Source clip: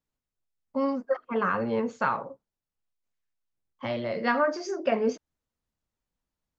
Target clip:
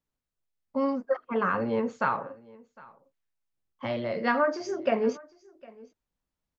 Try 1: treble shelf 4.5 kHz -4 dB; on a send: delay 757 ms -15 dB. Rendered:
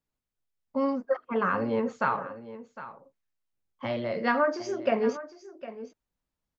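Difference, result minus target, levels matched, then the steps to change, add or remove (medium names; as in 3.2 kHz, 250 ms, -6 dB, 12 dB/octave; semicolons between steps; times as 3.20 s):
echo-to-direct +8.5 dB
change: delay 757 ms -23.5 dB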